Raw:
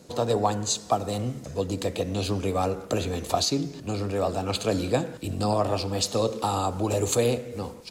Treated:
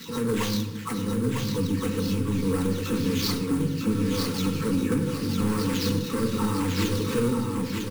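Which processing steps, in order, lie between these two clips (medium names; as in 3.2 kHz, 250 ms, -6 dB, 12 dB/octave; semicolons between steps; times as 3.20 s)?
delay that grows with frequency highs early, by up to 328 ms; peaking EQ 240 Hz +7 dB 2.3 oct; comb of notches 400 Hz; sample-rate reducer 9.7 kHz, jitter 20%; saturation -20 dBFS, distortion -12 dB; Butterworth band-stop 660 Hz, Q 1.4; on a send: feedback delay 951 ms, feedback 26%, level -4.5 dB; on the sum: simulated room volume 2700 m³, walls furnished, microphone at 1.6 m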